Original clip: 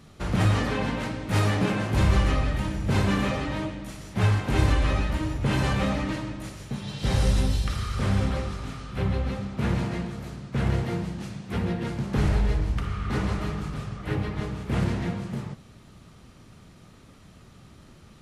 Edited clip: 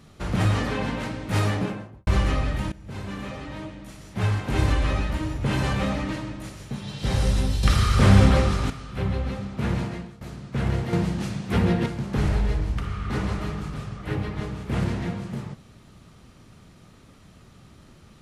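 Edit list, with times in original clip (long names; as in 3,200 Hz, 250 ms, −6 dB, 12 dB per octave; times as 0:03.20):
0:01.43–0:02.07: fade out and dull
0:02.72–0:04.72: fade in, from −17 dB
0:07.63–0:08.70: clip gain +9.5 dB
0:09.81–0:10.21: fade out, to −16 dB
0:10.93–0:11.86: clip gain +6.5 dB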